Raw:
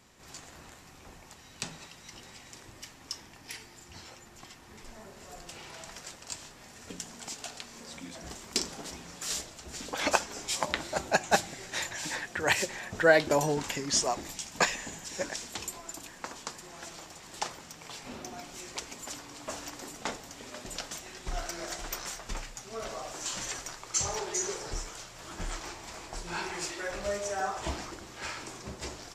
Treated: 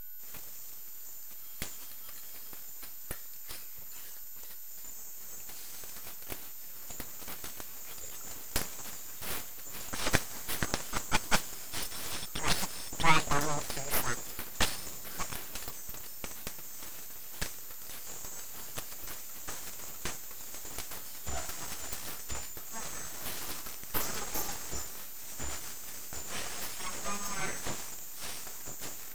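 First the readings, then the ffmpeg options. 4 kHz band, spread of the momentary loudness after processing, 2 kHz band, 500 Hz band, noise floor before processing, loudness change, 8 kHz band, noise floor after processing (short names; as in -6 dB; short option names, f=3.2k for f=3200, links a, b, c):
-2.5 dB, 12 LU, -4.5 dB, -11.0 dB, -53 dBFS, -3.5 dB, -2.0 dB, -42 dBFS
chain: -af "aeval=exprs='val(0)+0.0112*sin(2*PI*7100*n/s)':c=same,aeval=exprs='abs(val(0))':c=same"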